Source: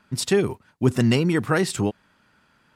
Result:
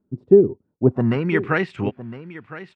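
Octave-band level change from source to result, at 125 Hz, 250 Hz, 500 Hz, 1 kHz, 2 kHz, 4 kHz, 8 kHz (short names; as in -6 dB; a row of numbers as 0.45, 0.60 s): -0.5 dB, +1.0 dB, +6.0 dB, +0.5 dB, +2.0 dB, -11.5 dB, under -30 dB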